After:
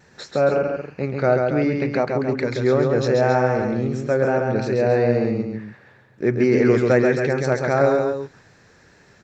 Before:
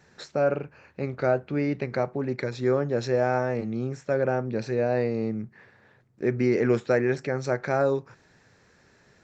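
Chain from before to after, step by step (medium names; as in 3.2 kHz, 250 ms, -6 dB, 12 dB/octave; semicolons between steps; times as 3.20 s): wow and flutter 29 cents; loudspeakers at several distances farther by 46 m -4 dB, 94 m -9 dB; trim +5 dB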